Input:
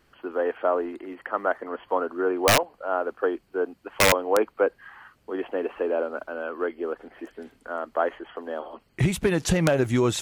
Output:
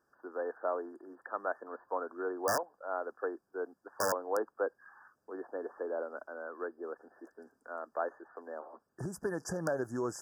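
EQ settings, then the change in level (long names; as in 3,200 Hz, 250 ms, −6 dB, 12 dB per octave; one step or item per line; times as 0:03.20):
high-pass filter 440 Hz 6 dB per octave
linear-phase brick-wall band-stop 1,800–4,700 Hz
parametric band 14,000 Hz −5 dB 2.8 octaves
−8.5 dB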